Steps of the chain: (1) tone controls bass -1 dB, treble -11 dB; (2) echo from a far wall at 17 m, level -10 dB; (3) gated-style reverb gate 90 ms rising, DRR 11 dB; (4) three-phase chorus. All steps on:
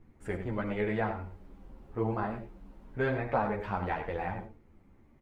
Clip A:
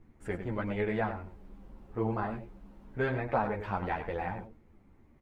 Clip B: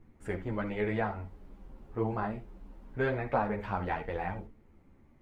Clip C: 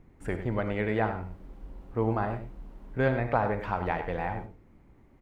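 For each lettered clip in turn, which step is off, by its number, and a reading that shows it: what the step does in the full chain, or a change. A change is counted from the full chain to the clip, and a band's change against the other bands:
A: 3, momentary loudness spread change +5 LU; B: 2, momentary loudness spread change +2 LU; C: 4, 125 Hz band +1.5 dB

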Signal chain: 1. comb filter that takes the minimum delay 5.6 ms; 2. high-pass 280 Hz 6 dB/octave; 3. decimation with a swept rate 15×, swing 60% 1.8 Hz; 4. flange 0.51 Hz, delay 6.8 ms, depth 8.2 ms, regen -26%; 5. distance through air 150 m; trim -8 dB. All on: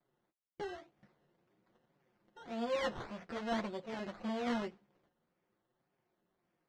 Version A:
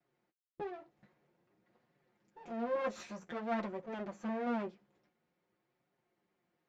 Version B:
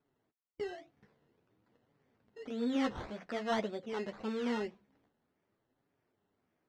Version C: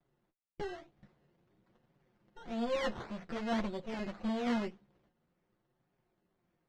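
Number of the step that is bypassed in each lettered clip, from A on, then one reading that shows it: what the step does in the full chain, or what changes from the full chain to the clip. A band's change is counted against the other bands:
3, 4 kHz band -9.0 dB; 1, 250 Hz band +3.0 dB; 2, 125 Hz band +3.0 dB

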